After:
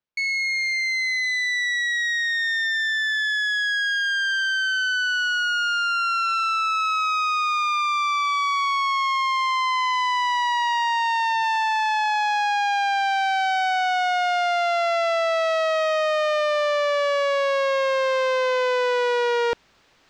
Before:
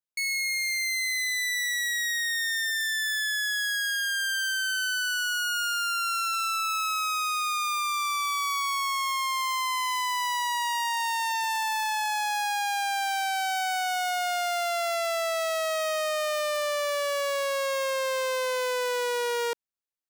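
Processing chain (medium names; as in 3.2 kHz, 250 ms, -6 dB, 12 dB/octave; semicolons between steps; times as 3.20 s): reverse; upward compressor, threshold -33 dBFS; reverse; distance through air 180 m; trim +7.5 dB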